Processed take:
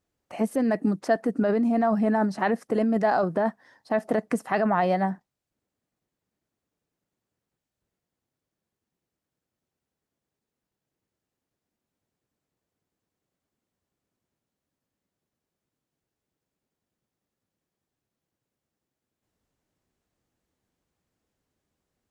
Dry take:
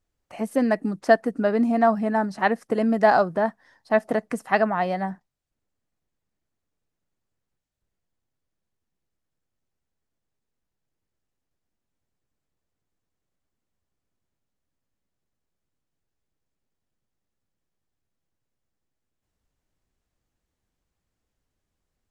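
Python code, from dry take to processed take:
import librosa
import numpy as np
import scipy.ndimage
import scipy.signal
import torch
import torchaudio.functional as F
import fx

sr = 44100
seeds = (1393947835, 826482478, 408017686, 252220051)

p1 = fx.highpass(x, sr, hz=330.0, slope=6)
p2 = fx.low_shelf(p1, sr, hz=470.0, db=10.0)
p3 = fx.over_compress(p2, sr, threshold_db=-21.0, ratio=-0.5)
p4 = p2 + (p3 * librosa.db_to_amplitude(2.0))
y = p4 * librosa.db_to_amplitude(-9.0)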